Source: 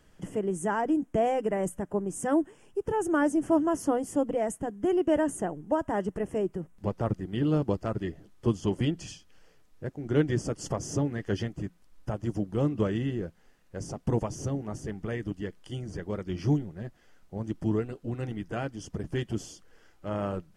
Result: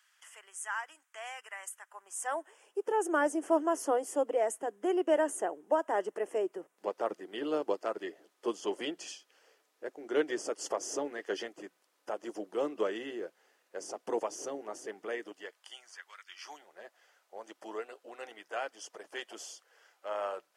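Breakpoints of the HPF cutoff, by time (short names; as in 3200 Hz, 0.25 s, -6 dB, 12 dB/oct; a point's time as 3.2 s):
HPF 24 dB/oct
1.89 s 1200 Hz
2.83 s 390 Hz
15.2 s 390 Hz
16.21 s 1500 Hz
16.78 s 540 Hz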